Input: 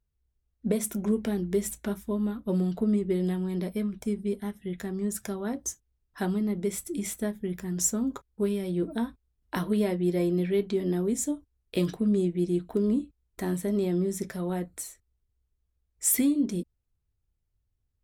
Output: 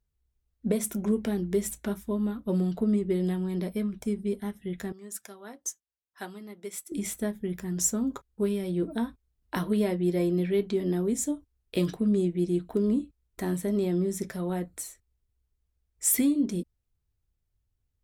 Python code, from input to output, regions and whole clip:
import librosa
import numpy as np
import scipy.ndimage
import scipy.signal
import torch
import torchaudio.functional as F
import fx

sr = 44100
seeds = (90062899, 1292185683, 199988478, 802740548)

y = fx.chain(x, sr, fx.highpass(hz=840.0, slope=6),
    fx.upward_expand(threshold_db=-48.0, expansion=1.5), at=(4.92, 6.92))